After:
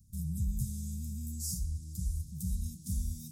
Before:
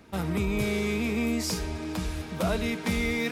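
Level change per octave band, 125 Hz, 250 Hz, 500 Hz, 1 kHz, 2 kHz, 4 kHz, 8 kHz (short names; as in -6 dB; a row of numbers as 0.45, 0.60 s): -2.0 dB, -14.0 dB, under -40 dB, under -40 dB, under -40 dB, -16.5 dB, -2.5 dB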